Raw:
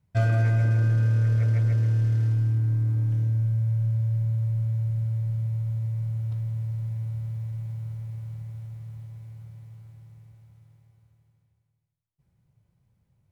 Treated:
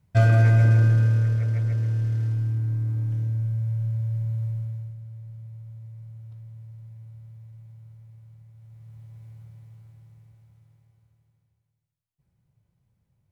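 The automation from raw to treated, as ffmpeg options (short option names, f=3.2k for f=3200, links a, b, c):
-af "volume=15.5dB,afade=t=out:st=0.72:d=0.7:silence=0.446684,afade=t=out:st=4.45:d=0.52:silence=0.281838,afade=t=in:st=8.55:d=0.72:silence=0.298538"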